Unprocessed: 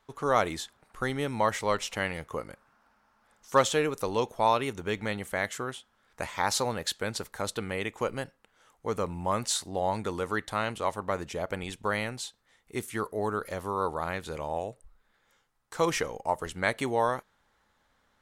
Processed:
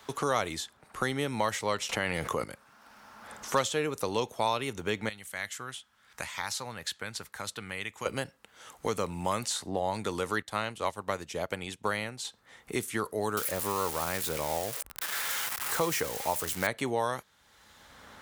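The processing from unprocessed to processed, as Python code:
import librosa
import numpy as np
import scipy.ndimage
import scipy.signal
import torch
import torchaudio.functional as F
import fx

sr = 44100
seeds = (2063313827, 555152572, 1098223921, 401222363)

y = fx.env_flatten(x, sr, amount_pct=70, at=(1.89, 2.44))
y = fx.tone_stack(y, sr, knobs='5-5-5', at=(5.09, 8.06))
y = fx.upward_expand(y, sr, threshold_db=-49.0, expansion=1.5, at=(10.42, 12.25))
y = fx.crossing_spikes(y, sr, level_db=-21.5, at=(13.37, 16.67))
y = scipy.signal.sosfilt(scipy.signal.butter(2, 58.0, 'highpass', fs=sr, output='sos'), y)
y = fx.band_squash(y, sr, depth_pct=70)
y = y * librosa.db_to_amplitude(-1.5)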